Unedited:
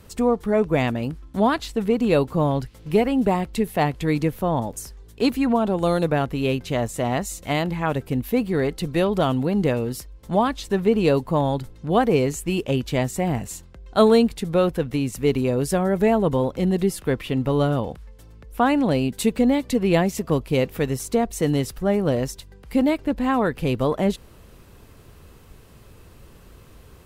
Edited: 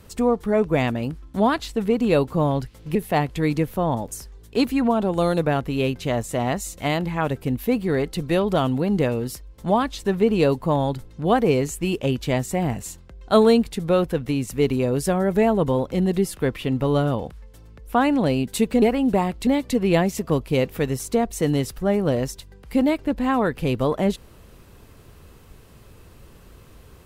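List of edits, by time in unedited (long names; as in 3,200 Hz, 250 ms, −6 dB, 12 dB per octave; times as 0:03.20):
0:02.95–0:03.60: move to 0:19.47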